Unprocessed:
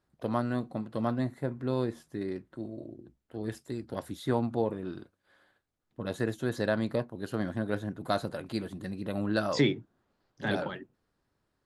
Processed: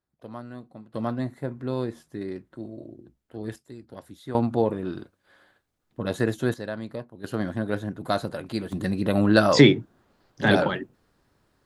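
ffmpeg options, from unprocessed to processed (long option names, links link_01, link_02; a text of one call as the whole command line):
ffmpeg -i in.wav -af "asetnsamples=nb_out_samples=441:pad=0,asendcmd='0.94 volume volume 1.5dB;3.56 volume volume -6dB;4.35 volume volume 6.5dB;6.54 volume volume -4.5dB;7.24 volume volume 4dB;8.72 volume volume 11dB',volume=-9dB" out.wav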